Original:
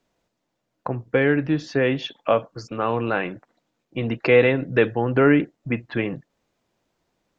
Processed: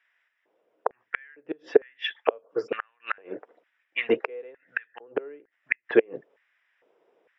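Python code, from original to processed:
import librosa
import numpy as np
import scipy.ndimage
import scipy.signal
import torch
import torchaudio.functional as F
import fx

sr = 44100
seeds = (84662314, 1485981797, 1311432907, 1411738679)

y = fx.gate_flip(x, sr, shuts_db=-12.0, range_db=-37)
y = fx.filter_lfo_highpass(y, sr, shape='square', hz=1.1, low_hz=440.0, high_hz=1800.0, q=4.8)
y = scipy.signal.savgol_filter(y, 25, 4, mode='constant')
y = y * librosa.db_to_amplitude(3.0)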